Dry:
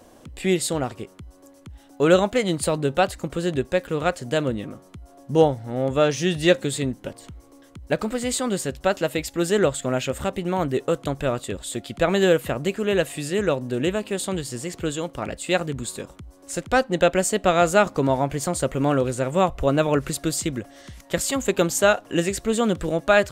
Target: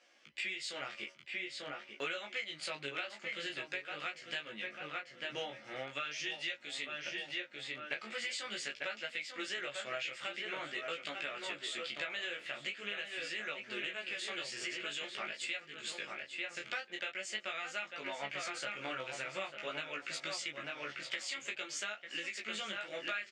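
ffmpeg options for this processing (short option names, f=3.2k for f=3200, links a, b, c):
-filter_complex "[0:a]highpass=190,equalizer=f=260:t=q:w=4:g=-8,equalizer=f=450:t=q:w=4:g=-9,equalizer=f=720:t=q:w=4:g=-6,equalizer=f=1k:t=q:w=4:g=-10,equalizer=f=2.2k:t=q:w=4:g=6,equalizer=f=3.9k:t=q:w=4:g=-8,lowpass=f=4.1k:w=0.5412,lowpass=f=4.1k:w=1.3066,agate=range=-9dB:threshold=-45dB:ratio=16:detection=peak,aderivative,asplit=2[a][b];[b]adelay=894,lowpass=f=2.5k:p=1,volume=-7dB,asplit=2[c][d];[d]adelay=894,lowpass=f=2.5k:p=1,volume=0.27,asplit=2[e][f];[f]adelay=894,lowpass=f=2.5k:p=1,volume=0.27[g];[c][e][g]amix=inputs=3:normalize=0[h];[a][h]amix=inputs=2:normalize=0,flanger=delay=18:depth=5.4:speed=0.45,acompressor=threshold=-54dB:ratio=12,asplit=2[i][j];[j]adelay=14,volume=-4dB[k];[i][k]amix=inputs=2:normalize=0,volume=16dB"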